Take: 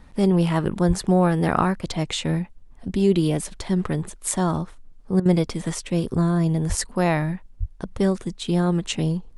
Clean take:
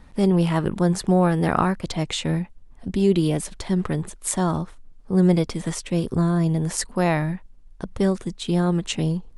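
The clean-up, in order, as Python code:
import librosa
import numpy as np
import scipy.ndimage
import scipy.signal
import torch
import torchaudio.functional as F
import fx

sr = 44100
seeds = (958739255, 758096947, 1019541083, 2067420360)

y = fx.fix_deplosive(x, sr, at_s=(0.87, 6.68, 7.59))
y = fx.fix_interpolate(y, sr, at_s=(5.2,), length_ms=54.0)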